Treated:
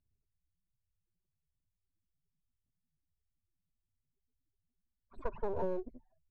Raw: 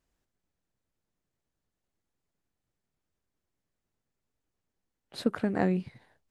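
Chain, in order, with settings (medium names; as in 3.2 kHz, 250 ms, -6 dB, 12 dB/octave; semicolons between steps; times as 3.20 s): loudest bins only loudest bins 4; full-wave rectifier; low-pass sweep 4 kHz -> 540 Hz, 4.51–5.78 s; in parallel at -5 dB: hard clipper -31.5 dBFS, distortion -5 dB; on the sum: rippled EQ curve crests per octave 1.5, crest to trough 6 dB; compression 10:1, threshold -30 dBFS, peak gain reduction 9.5 dB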